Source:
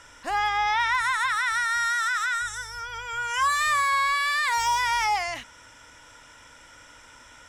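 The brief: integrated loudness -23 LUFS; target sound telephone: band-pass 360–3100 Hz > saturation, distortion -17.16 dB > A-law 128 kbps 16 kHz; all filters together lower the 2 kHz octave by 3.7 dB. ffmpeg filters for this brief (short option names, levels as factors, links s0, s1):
-af "highpass=360,lowpass=3100,equalizer=f=2000:t=o:g=-4,asoftclip=threshold=0.075,volume=1.88" -ar 16000 -c:a pcm_alaw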